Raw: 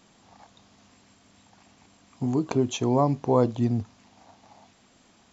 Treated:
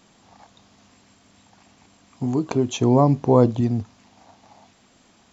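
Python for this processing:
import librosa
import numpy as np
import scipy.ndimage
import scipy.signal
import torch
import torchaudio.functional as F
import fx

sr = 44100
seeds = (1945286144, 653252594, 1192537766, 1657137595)

y = fx.low_shelf(x, sr, hz=470.0, db=5.5, at=(2.76, 3.61))
y = y * librosa.db_to_amplitude(2.5)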